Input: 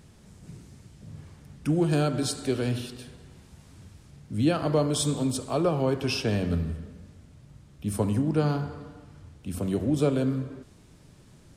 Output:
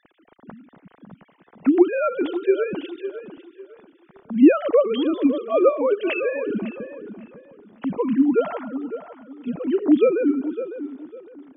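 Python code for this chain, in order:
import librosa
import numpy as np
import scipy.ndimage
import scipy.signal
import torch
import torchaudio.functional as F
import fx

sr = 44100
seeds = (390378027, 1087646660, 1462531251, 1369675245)

p1 = fx.sine_speech(x, sr)
p2 = p1 + fx.echo_tape(p1, sr, ms=554, feedback_pct=29, wet_db=-10.5, lp_hz=1800.0, drive_db=10.0, wow_cents=23, dry=0)
y = p2 * 10.0 ** (6.0 / 20.0)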